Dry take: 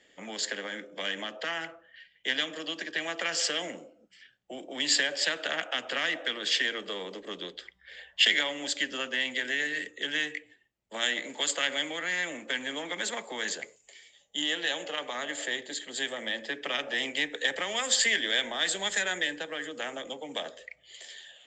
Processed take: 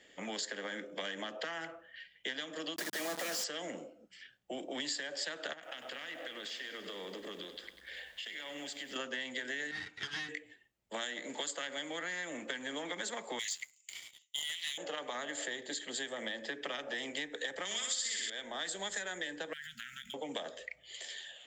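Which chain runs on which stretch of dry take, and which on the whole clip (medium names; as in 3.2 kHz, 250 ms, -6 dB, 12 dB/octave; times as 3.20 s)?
2.76–3.44 s: peaking EQ 1.5 kHz -4.5 dB 0.2 oct + companded quantiser 2-bit + brick-wall FIR high-pass 150 Hz
5.53–8.96 s: compression, threshold -42 dBFS + bit-crushed delay 97 ms, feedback 80%, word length 10-bit, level -12 dB
9.71–10.29 s: comb filter that takes the minimum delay 9.3 ms + band-pass 150–4400 Hz + peaking EQ 490 Hz -13.5 dB 1.5 oct
13.39–14.78 s: Chebyshev high-pass 2 kHz, order 6 + waveshaping leveller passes 2
17.65–18.30 s: FFT filter 160 Hz 0 dB, 820 Hz -8 dB, 1.3 kHz 0 dB, 3.8 kHz +10 dB + flutter echo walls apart 10.2 m, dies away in 1.4 s
19.53–20.14 s: median filter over 5 samples + brick-wall FIR band-stop 230–1300 Hz + compression 5:1, threshold -42 dBFS
whole clip: dynamic bell 2.6 kHz, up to -7 dB, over -43 dBFS, Q 1.9; compression 6:1, threshold -37 dBFS; trim +1 dB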